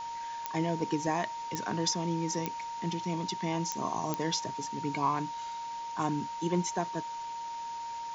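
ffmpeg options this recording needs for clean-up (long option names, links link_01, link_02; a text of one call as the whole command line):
ffmpeg -i in.wav -af "adeclick=threshold=4,bandreject=frequency=930:width=30,afwtdn=0.004" out.wav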